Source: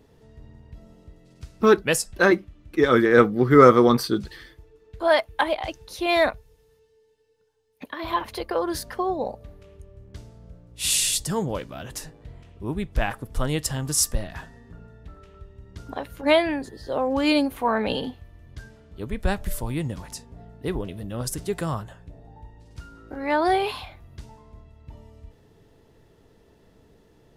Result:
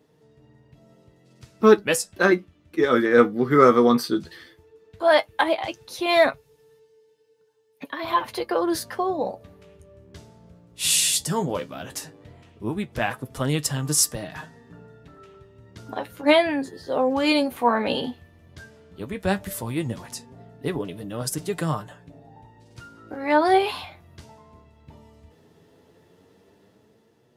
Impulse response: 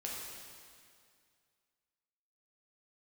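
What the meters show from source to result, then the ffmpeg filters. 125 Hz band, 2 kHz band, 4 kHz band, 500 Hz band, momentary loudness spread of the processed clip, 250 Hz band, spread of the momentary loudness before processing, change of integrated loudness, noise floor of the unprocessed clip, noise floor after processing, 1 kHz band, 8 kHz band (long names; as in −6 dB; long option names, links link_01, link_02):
−1.5 dB, +0.5 dB, +1.5 dB, +0.5 dB, 17 LU, 0.0 dB, 18 LU, +0.5 dB, −59 dBFS, −61 dBFS, +1.0 dB, +1.5 dB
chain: -af "flanger=delay=6.5:depth=6.1:regen=44:speed=0.14:shape=sinusoidal,highpass=130,dynaudnorm=framelen=160:gausssize=11:maxgain=6dB"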